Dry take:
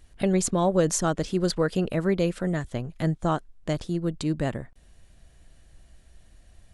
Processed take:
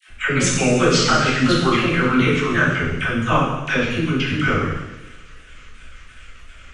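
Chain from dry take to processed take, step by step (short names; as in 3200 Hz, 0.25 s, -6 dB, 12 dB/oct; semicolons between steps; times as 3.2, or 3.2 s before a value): repeated pitch sweeps -8 st, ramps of 0.355 s; gate -53 dBFS, range -14 dB; band shelf 2000 Hz +13.5 dB; in parallel at +0.5 dB: compressor, threshold -33 dBFS, peak gain reduction 15 dB; on the sum: dispersion lows, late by 86 ms, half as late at 720 Hz; on a send: thin delay 65 ms, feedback 80%, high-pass 4800 Hz, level -11 dB; on the sum: two-slope reverb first 0.97 s, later 2.8 s, from -24 dB, DRR -5 dB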